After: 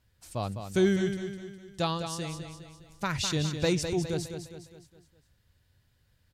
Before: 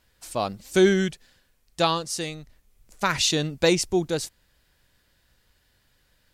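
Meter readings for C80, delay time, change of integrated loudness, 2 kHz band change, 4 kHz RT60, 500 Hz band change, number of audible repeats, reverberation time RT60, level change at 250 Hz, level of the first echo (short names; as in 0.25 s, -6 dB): none, 0.205 s, -6.5 dB, -8.0 dB, none, -6.5 dB, 5, none, -4.0 dB, -8.0 dB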